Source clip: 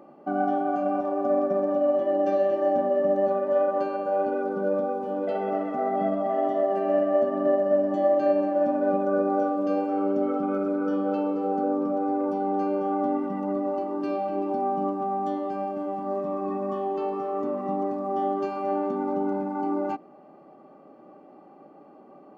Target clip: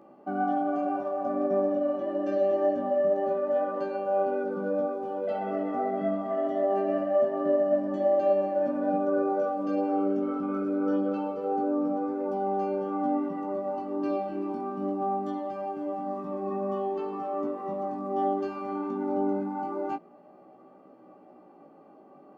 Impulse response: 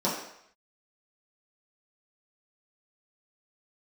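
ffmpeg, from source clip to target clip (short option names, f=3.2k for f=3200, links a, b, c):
-af "flanger=delay=15.5:depth=5.7:speed=0.24"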